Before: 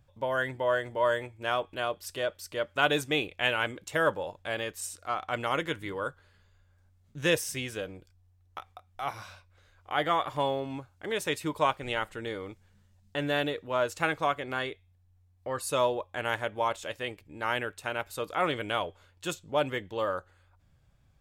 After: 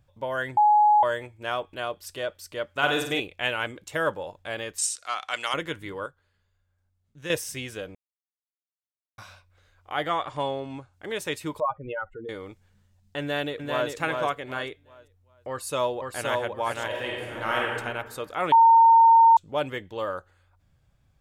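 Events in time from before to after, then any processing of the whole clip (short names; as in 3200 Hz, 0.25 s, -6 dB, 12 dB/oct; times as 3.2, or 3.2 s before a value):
0.57–1.03 bleep 840 Hz -14.5 dBFS
2.74–3.2 flutter echo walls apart 8.5 m, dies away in 0.57 s
4.78–5.54 weighting filter ITU-R 468
6.06–7.3 gain -9 dB
7.95–9.18 mute
10.1–10.94 brick-wall FIR low-pass 10000 Hz
11.6–12.29 spectral contrast raised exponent 3.1
13.2–13.9 echo throw 0.39 s, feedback 30%, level -3.5 dB
15.49–16.36 echo throw 0.52 s, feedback 30%, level -2.5 dB
16.86–17.77 reverb throw, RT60 1.4 s, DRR -3 dB
18.52–19.37 bleep 913 Hz -11.5 dBFS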